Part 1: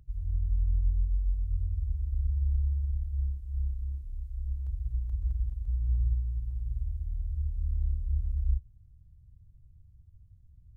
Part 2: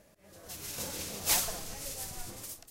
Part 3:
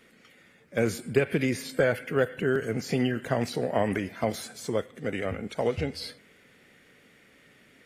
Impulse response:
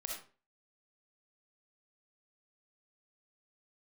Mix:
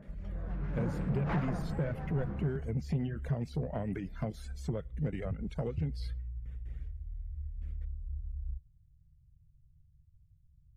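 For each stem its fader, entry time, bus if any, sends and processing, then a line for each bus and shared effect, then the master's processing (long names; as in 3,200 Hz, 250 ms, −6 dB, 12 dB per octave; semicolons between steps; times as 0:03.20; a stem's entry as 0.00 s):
−14.0 dB, 0.00 s, bus A, no send, no processing
+3.0 dB, 0.00 s, no bus, no send, Chebyshev low-pass filter 1,600 Hz, order 3; parametric band 190 Hz +8.5 dB
−6.0 dB, 0.00 s, bus A, no send, reverb reduction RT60 0.89 s; noise gate with hold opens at −49 dBFS; spectral tilt −2.5 dB per octave
bus A: 0.0 dB, low-shelf EQ 120 Hz +7 dB; downward compressor 3 to 1, threshold −34 dBFS, peak gain reduction 12.5 dB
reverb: not used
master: parametric band 150 Hz +12 dB 0.41 octaves; soft clipping −24 dBFS, distortion −16 dB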